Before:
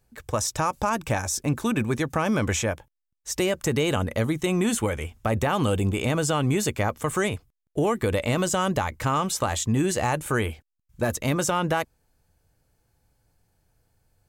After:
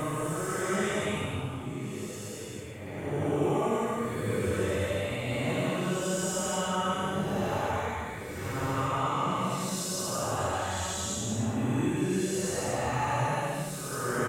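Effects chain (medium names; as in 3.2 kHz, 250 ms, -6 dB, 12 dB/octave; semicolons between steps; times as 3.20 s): feedback delay 924 ms, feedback 47%, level -9 dB; Paulstretch 4.3×, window 0.25 s, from 7.03 s; trim -6 dB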